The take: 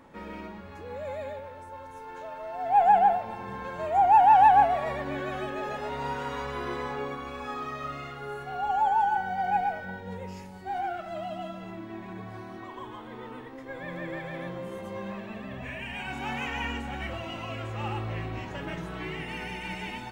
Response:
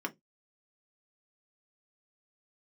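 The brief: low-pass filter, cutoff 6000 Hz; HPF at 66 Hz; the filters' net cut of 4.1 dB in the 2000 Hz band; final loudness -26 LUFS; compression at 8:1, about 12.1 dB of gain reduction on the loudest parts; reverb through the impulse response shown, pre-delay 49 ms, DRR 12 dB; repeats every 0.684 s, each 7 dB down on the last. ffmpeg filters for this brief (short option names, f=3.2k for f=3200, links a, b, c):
-filter_complex "[0:a]highpass=66,lowpass=6k,equalizer=f=2k:t=o:g=-5.5,acompressor=threshold=-28dB:ratio=8,aecho=1:1:684|1368|2052|2736|3420:0.447|0.201|0.0905|0.0407|0.0183,asplit=2[a][b];[1:a]atrim=start_sample=2205,adelay=49[c];[b][c]afir=irnorm=-1:irlink=0,volume=-15.5dB[d];[a][d]amix=inputs=2:normalize=0,volume=8.5dB"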